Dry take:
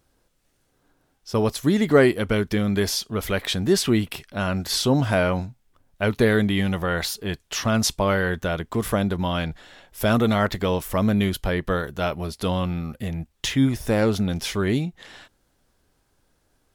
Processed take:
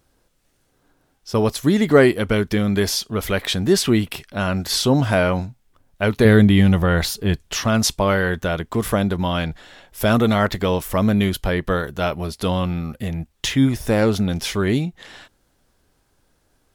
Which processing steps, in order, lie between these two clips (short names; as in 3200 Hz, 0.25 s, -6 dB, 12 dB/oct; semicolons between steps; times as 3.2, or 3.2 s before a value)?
6.25–7.57 low shelf 250 Hz +9.5 dB; gain +3 dB